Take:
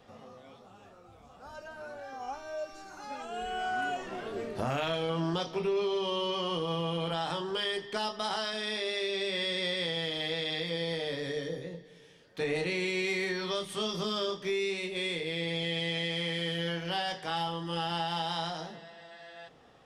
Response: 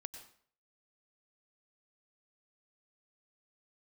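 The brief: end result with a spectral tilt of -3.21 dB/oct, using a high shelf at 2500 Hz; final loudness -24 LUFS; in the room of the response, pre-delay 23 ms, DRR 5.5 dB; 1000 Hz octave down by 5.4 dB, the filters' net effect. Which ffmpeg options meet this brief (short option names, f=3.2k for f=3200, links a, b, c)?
-filter_complex "[0:a]equalizer=f=1k:t=o:g=-7,highshelf=f=2.5k:g=-3.5,asplit=2[a][b];[1:a]atrim=start_sample=2205,adelay=23[c];[b][c]afir=irnorm=-1:irlink=0,volume=-1.5dB[d];[a][d]amix=inputs=2:normalize=0,volume=9.5dB"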